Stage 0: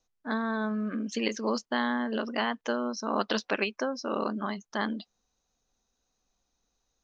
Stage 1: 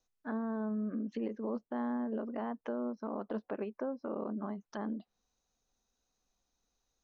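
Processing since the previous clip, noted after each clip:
treble cut that deepens with the level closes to 730 Hz, closed at −29 dBFS
brickwall limiter −23.5 dBFS, peak gain reduction 6 dB
level −4 dB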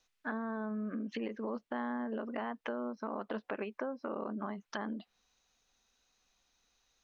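parametric band 2,500 Hz +12.5 dB 2.5 octaves
downward compressor 2 to 1, threshold −38 dBFS, peak gain reduction 5.5 dB
level +1 dB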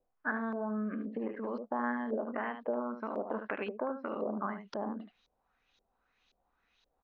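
single-tap delay 75 ms −8.5 dB
auto-filter low-pass saw up 1.9 Hz 490–4,100 Hz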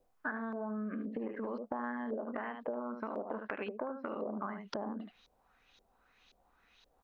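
downward compressor 4 to 1, threshold −44 dBFS, peak gain reduction 13 dB
level +7 dB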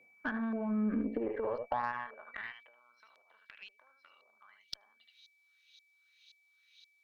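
steady tone 2,300 Hz −62 dBFS
high-pass filter sweep 180 Hz → 3,900 Hz, 0:00.81–0:02.83
harmonic generator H 6 −26 dB, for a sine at −19.5 dBFS

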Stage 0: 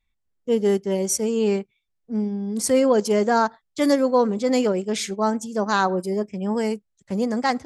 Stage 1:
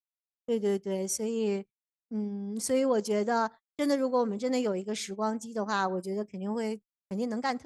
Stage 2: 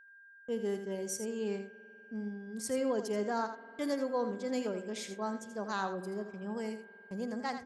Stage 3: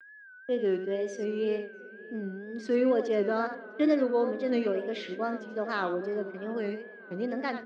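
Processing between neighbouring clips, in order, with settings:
noise gate −34 dBFS, range −46 dB; level −8.5 dB
steady tone 1,600 Hz −49 dBFS; on a send: single-tap delay 82 ms −9.5 dB; on the sum: spring reverb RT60 3.3 s, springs 49 ms, chirp 75 ms, DRR 16.5 dB; level −6.5 dB
loudspeaker in its box 260–3,800 Hz, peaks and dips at 310 Hz +10 dB, 620 Hz +3 dB, 880 Hz −10 dB; tape wow and flutter 120 cents; feedback echo with a low-pass in the loop 653 ms, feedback 61%, low-pass 1,600 Hz, level −21.5 dB; level +6.5 dB

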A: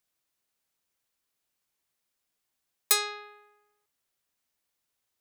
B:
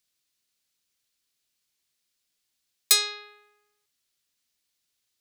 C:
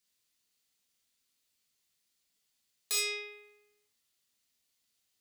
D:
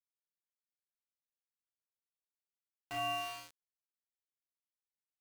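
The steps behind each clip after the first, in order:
drawn EQ curve 270 Hz 0 dB, 860 Hz −6 dB, 4,300 Hz +8 dB, 15,000 Hz +1 dB
downward compressor, threshold −21 dBFS, peak gain reduction 7.5 dB; soft clipping −23 dBFS, distortion −7 dB; reverb whose tail is shaped and stops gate 90 ms flat, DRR −3 dB; level −5 dB
four-comb reverb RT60 1.4 s, combs from 28 ms, DRR 8.5 dB; voice inversion scrambler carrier 3,200 Hz; centre clipping without the shift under −42.5 dBFS

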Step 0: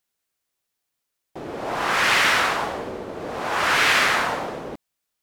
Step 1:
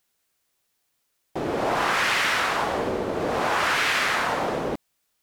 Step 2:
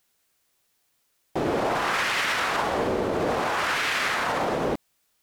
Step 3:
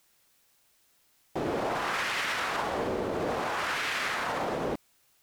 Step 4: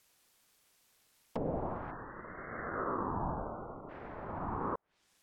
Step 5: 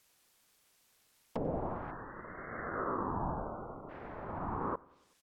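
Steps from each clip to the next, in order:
downward compressor 6 to 1, threshold −27 dBFS, peak gain reduction 12 dB; level +6.5 dB
brickwall limiter −19.5 dBFS, peak gain reduction 8 dB; level +3 dB
background noise white −62 dBFS; level −5.5 dB
treble cut that deepens with the level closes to 490 Hz, closed at −31 dBFS; gain on a spectral selection 0:01.91–0:03.90, 1,300–7,700 Hz −30 dB; ring modulator whose carrier an LFO sweeps 520 Hz, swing 75%, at 0.39 Hz; level +1 dB
repeating echo 94 ms, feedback 58%, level −23.5 dB

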